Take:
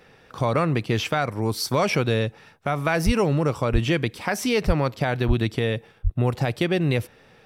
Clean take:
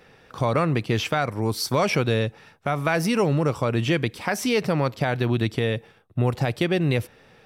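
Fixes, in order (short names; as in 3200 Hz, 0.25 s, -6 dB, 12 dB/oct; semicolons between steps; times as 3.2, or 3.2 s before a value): de-plosive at 3.05/3.72/4.66/5.27/6.03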